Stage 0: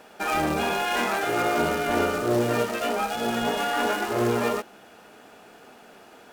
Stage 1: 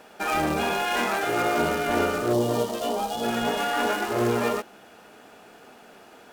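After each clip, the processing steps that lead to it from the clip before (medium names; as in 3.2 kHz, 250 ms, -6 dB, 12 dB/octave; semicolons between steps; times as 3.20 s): time-frequency box 2.33–3.23 s, 1.2–2.8 kHz -11 dB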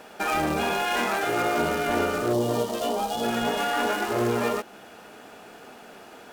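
compression 1.5:1, threshold -32 dBFS, peak gain reduction 5 dB; trim +3.5 dB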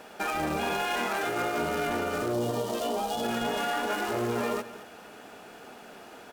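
peak limiter -19.5 dBFS, peak gain reduction 6.5 dB; delay 216 ms -14.5 dB; trim -1.5 dB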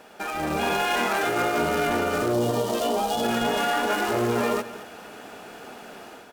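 level rider gain up to 7 dB; trim -1.5 dB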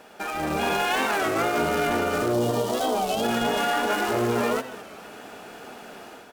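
warped record 33 1/3 rpm, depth 160 cents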